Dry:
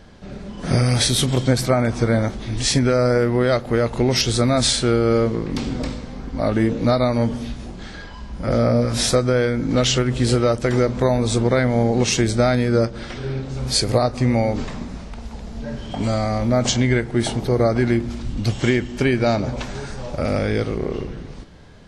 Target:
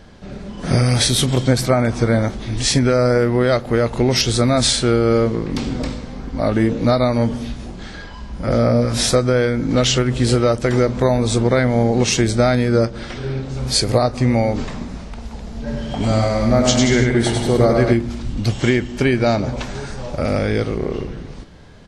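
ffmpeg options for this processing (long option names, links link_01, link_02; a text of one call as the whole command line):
ffmpeg -i in.wav -filter_complex "[0:a]asplit=3[link_01][link_02][link_03];[link_01]afade=type=out:start_time=15.66:duration=0.02[link_04];[link_02]aecho=1:1:100|180|244|295.2|336.2:0.631|0.398|0.251|0.158|0.1,afade=type=in:start_time=15.66:duration=0.02,afade=type=out:start_time=17.92:duration=0.02[link_05];[link_03]afade=type=in:start_time=17.92:duration=0.02[link_06];[link_04][link_05][link_06]amix=inputs=3:normalize=0,volume=2dB" out.wav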